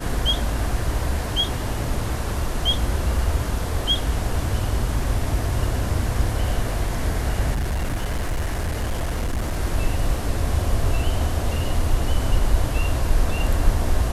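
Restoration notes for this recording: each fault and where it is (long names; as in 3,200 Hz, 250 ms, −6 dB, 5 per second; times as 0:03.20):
0:07.55–0:09.57: clipping −20 dBFS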